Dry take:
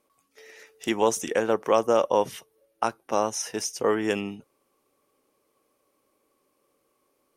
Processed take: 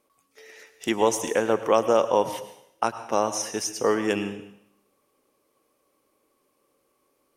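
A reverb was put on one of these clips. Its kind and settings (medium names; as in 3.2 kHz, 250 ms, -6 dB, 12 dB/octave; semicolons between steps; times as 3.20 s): plate-style reverb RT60 0.73 s, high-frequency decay 1×, pre-delay 90 ms, DRR 11.5 dB; trim +1 dB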